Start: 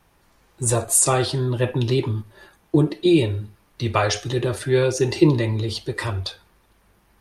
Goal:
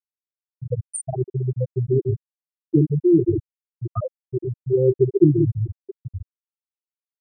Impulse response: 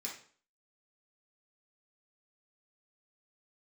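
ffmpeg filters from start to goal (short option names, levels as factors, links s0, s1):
-filter_complex "[0:a]asplit=2[s0][s1];[1:a]atrim=start_sample=2205,adelay=135[s2];[s1][s2]afir=irnorm=-1:irlink=0,volume=0.631[s3];[s0][s3]amix=inputs=2:normalize=0,afftfilt=real='re*gte(hypot(re,im),0.794)':imag='im*gte(hypot(re,im),0.794)':win_size=1024:overlap=0.75,volume=1.12"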